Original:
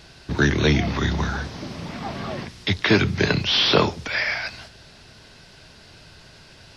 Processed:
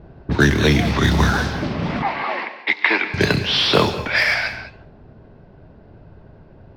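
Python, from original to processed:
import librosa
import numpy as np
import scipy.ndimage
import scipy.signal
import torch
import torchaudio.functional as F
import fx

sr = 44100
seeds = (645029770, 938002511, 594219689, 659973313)

p1 = fx.quant_companded(x, sr, bits=4)
p2 = x + F.gain(torch.from_numpy(p1), -9.5).numpy()
p3 = fx.rider(p2, sr, range_db=5, speed_s=0.5)
p4 = fx.env_lowpass(p3, sr, base_hz=530.0, full_db=-15.5)
p5 = fx.cabinet(p4, sr, low_hz=370.0, low_slope=24, high_hz=3800.0, hz=(410.0, 600.0, 910.0, 1400.0, 2100.0, 3400.0), db=(-9, -7, 6, -4, 7, -8), at=(2.02, 3.14))
p6 = fx.rev_gated(p5, sr, seeds[0], gate_ms=230, shape='rising', drr_db=11.5)
y = F.gain(torch.from_numpy(p6), 2.5).numpy()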